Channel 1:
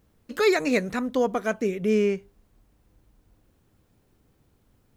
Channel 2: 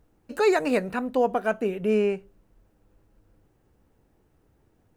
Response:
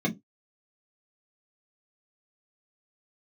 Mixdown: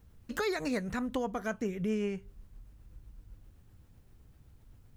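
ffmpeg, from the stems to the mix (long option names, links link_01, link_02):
-filter_complex "[0:a]lowshelf=frequency=230:gain=12,volume=-1.5dB[link_01];[1:a]tremolo=f=7.8:d=0.83,volume=0dB[link_02];[link_01][link_02]amix=inputs=2:normalize=0,equalizer=frequency=350:width_type=o:width=2.6:gain=-7,acompressor=threshold=-33dB:ratio=2.5"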